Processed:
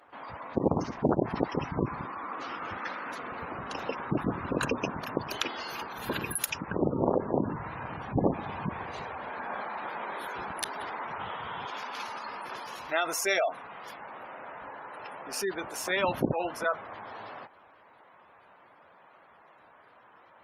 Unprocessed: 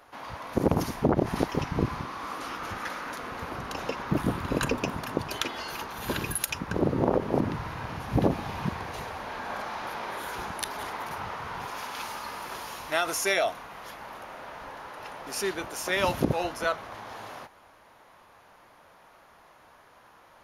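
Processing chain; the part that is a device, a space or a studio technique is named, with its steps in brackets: 11.20–11.79 s: peaking EQ 3.3 kHz +7.5 dB 0.37 oct; noise-suppressed video call (high-pass 140 Hz 6 dB/octave; spectral gate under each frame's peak -20 dB strong; trim -1 dB; Opus 20 kbps 48 kHz)

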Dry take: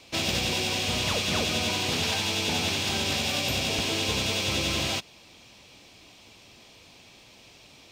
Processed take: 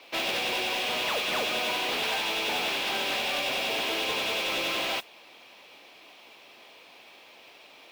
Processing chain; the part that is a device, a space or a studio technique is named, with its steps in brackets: carbon microphone (band-pass 470–3000 Hz; saturation -27 dBFS, distortion -17 dB; modulation noise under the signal 16 dB); trim +4.5 dB

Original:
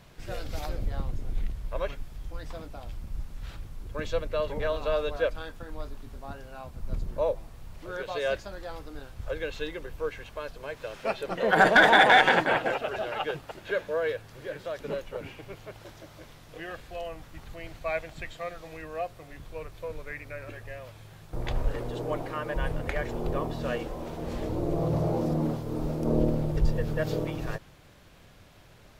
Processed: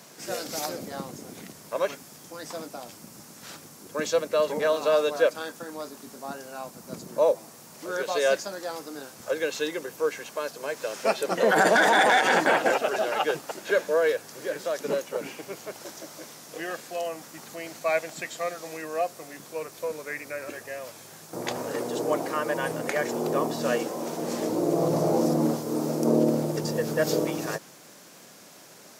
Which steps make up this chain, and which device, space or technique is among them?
high-pass 190 Hz 24 dB/octave; over-bright horn tweeter (resonant high shelf 4.5 kHz +8.5 dB, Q 1.5; peak limiter -16.5 dBFS, peak gain reduction 10.5 dB); trim +6 dB

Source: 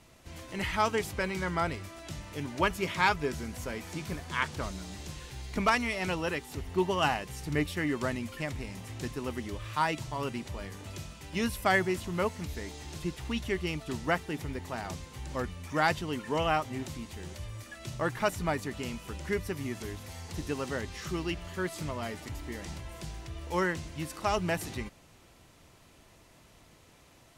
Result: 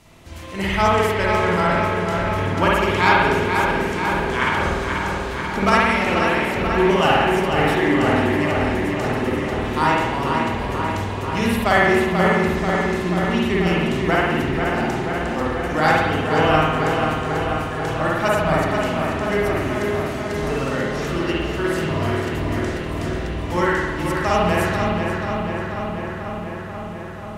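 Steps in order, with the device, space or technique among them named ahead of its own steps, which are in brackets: dub delay into a spring reverb (filtered feedback delay 487 ms, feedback 77%, low-pass 4.5 kHz, level -5 dB; spring tank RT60 1.2 s, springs 51 ms, chirp 20 ms, DRR -4.5 dB); trim +5.5 dB

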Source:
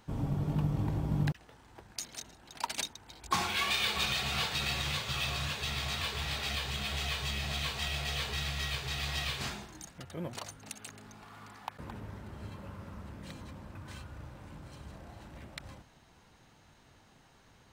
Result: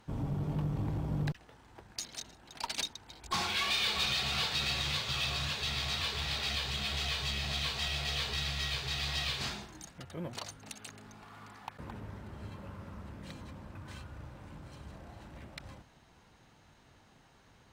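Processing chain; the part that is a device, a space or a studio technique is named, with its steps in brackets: tube preamp driven hard (valve stage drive 27 dB, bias 0.2; treble shelf 6.7 kHz -4 dB); dynamic bell 4.4 kHz, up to +6 dB, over -54 dBFS, Q 1.3

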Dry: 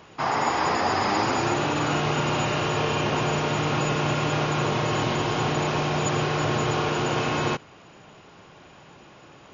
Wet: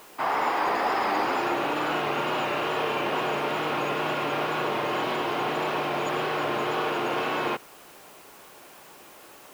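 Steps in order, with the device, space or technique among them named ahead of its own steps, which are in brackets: tape answering machine (band-pass 320–3300 Hz; saturation -15 dBFS, distortion -25 dB; wow and flutter; white noise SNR 25 dB)

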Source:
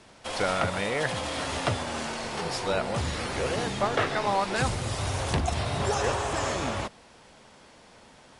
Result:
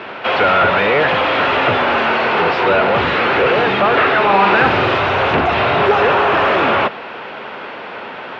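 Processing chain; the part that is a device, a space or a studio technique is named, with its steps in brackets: overdrive pedal into a guitar cabinet (overdrive pedal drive 30 dB, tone 1.7 kHz, clips at -10 dBFS; cabinet simulation 78–3500 Hz, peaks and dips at 400 Hz +5 dB, 1.4 kHz +5 dB, 2.6 kHz +5 dB); 4.25–4.98 s: flutter echo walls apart 7.8 m, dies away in 0.58 s; trim +4 dB

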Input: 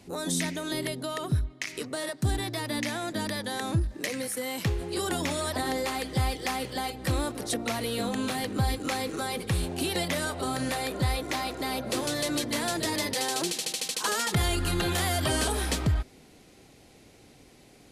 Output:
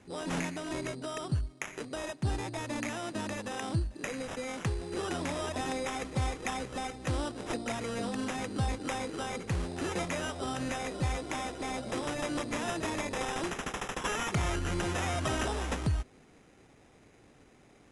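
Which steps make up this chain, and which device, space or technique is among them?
crushed at another speed (playback speed 2×; sample-and-hold 5×; playback speed 0.5×); trim -4.5 dB

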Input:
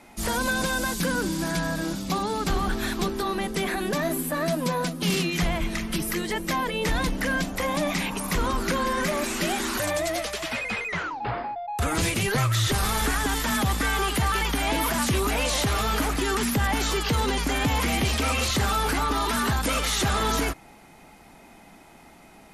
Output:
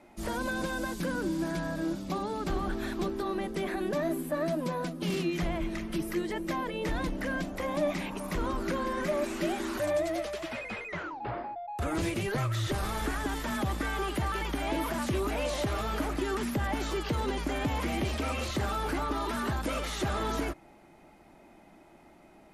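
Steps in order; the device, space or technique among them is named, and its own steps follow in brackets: inside a helmet (treble shelf 3.1 kHz -8 dB; small resonant body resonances 340/590 Hz, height 8 dB); trim -7 dB

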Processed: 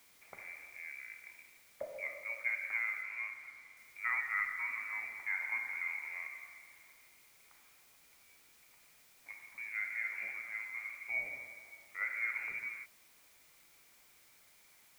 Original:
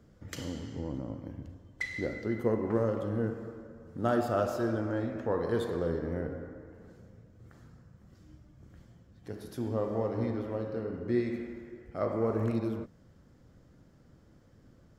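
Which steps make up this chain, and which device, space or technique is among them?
scrambled radio voice (band-pass 340–2700 Hz; frequency inversion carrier 2.6 kHz; white noise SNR 22 dB); 3.02–3.77 s: treble shelf 7.8 kHz -8 dB; trim -5.5 dB

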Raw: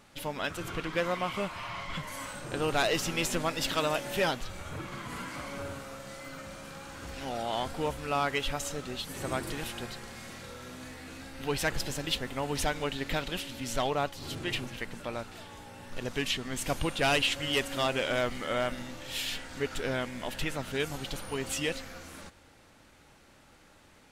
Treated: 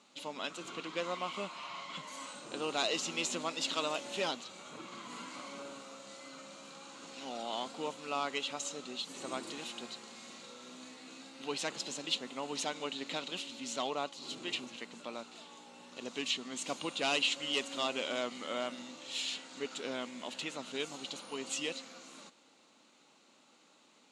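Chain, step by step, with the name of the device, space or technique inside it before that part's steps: television speaker (cabinet simulation 200–9000 Hz, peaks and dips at 240 Hz +3 dB, 1.1 kHz +4 dB, 1.7 kHz -7 dB, 2.8 kHz +4 dB, 4 kHz +8 dB, 6.9 kHz +8 dB); trim -7 dB

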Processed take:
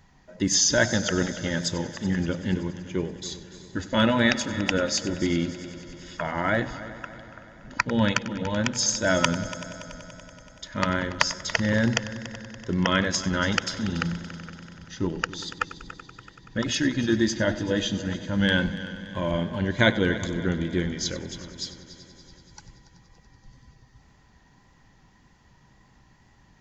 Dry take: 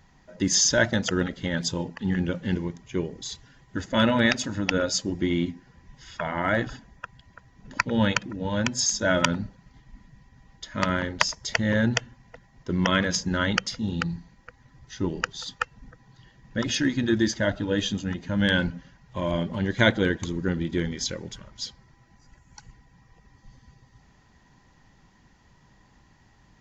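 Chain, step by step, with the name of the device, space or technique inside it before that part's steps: multi-head tape echo (multi-head delay 95 ms, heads first and third, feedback 70%, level -16.5 dB; wow and flutter 21 cents)

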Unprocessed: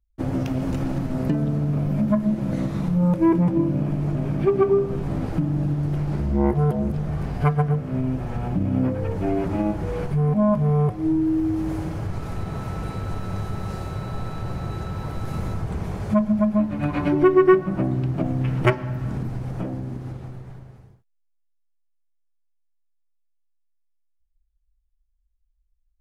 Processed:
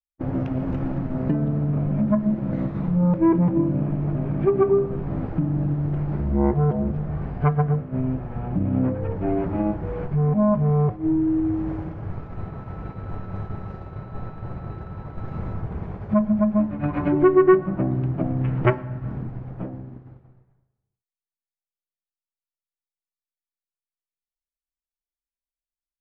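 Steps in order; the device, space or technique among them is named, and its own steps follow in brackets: hearing-loss simulation (low-pass 1.9 kHz 12 dB/octave; expander -23 dBFS)

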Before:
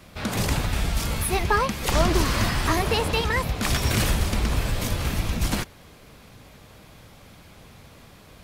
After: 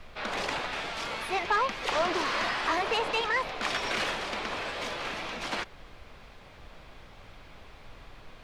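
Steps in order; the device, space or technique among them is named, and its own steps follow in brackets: aircraft cabin announcement (band-pass 500–3700 Hz; saturation -19.5 dBFS, distortion -15 dB; brown noise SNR 16 dB)

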